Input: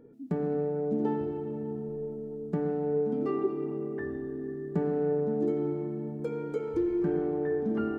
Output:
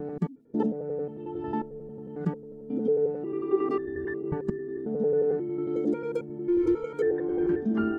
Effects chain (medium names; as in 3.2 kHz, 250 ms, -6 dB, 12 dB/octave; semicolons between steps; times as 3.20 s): slices played last to first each 90 ms, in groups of 6; spectral noise reduction 10 dB; trim +5 dB